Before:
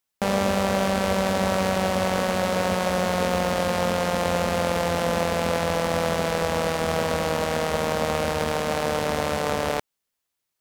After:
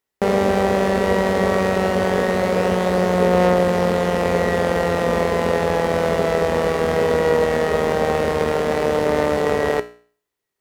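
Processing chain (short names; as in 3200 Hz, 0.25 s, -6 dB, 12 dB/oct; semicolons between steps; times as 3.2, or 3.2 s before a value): high shelf 2300 Hz -7.5 dB; resonator 60 Hz, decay 0.46 s, harmonics all, mix 60%; small resonant body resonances 410/1900 Hz, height 12 dB, ringing for 45 ms; gain +9 dB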